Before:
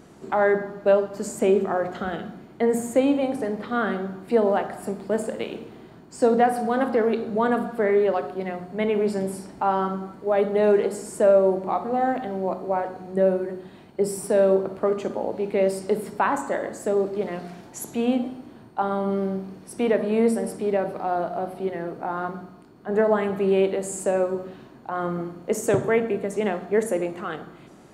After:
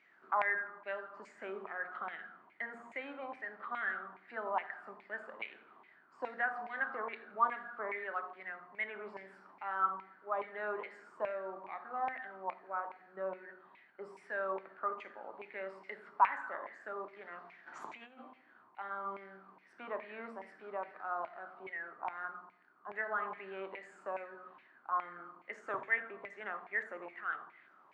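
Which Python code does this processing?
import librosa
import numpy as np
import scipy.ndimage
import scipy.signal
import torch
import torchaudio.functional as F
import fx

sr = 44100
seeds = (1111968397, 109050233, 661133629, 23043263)

y = fx.notch(x, sr, hz=470.0, q=14.0)
y = fx.filter_lfo_bandpass(y, sr, shape='saw_down', hz=2.4, low_hz=980.0, high_hz=2300.0, q=7.9)
y = fx.over_compress(y, sr, threshold_db=-58.0, ratio=-0.5, at=(17.66, 18.18), fade=0.02)
y = fx.bandpass_edges(y, sr, low_hz=100.0, high_hz=4800.0)
y = fx.echo_feedback(y, sr, ms=84, feedback_pct=49, wet_db=-23)
y = y * 10.0 ** (3.0 / 20.0)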